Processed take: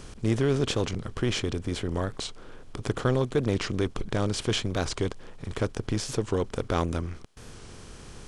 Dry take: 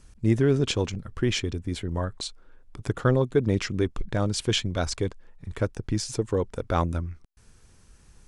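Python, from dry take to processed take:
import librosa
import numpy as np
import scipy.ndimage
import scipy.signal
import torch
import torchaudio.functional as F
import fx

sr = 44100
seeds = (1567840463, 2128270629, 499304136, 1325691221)

y = fx.bin_compress(x, sr, power=0.6)
y = fx.record_warp(y, sr, rpm=45.0, depth_cents=100.0)
y = y * librosa.db_to_amplitude(-5.0)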